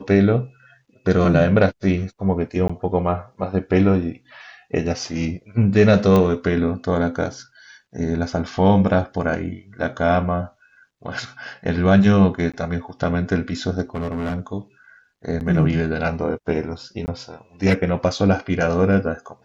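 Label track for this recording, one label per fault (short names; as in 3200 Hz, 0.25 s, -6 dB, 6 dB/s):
2.680000	2.690000	gap 15 ms
6.160000	6.160000	pop -7 dBFS
12.520000	12.540000	gap 16 ms
13.940000	14.400000	clipped -21.5 dBFS
15.400000	15.410000	gap 9.3 ms
17.060000	17.080000	gap 19 ms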